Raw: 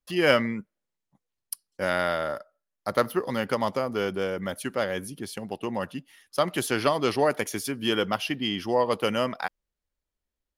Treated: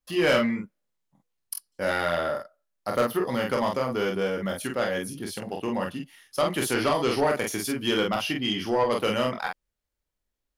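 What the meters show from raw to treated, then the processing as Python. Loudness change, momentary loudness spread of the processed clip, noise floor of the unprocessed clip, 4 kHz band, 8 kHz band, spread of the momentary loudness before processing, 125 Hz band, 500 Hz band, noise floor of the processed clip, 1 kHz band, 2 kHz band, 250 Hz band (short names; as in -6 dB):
+0.5 dB, 11 LU, under -85 dBFS, +1.0 dB, +2.0 dB, 12 LU, +1.0 dB, +0.5 dB, -83 dBFS, +0.5 dB, +0.5 dB, +1.5 dB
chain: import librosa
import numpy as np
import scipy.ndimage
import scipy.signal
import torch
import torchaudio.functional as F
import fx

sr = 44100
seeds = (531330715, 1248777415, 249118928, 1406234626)

y = fx.room_early_taps(x, sr, ms=(25, 47), db=(-6.5, -4.0))
y = 10.0 ** (-15.0 / 20.0) * np.tanh(y / 10.0 ** (-15.0 / 20.0))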